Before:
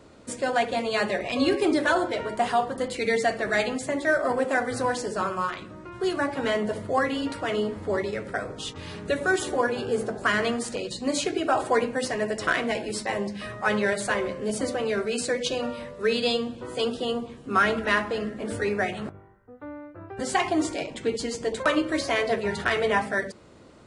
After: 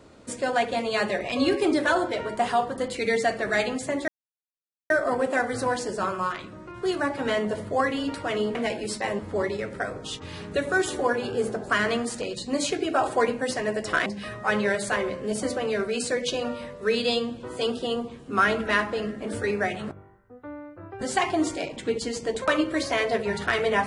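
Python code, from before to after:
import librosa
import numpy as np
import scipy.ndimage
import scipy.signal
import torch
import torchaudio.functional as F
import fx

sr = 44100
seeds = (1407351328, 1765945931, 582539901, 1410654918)

y = fx.edit(x, sr, fx.insert_silence(at_s=4.08, length_s=0.82),
    fx.move(start_s=12.6, length_s=0.64, to_s=7.73), tone=tone)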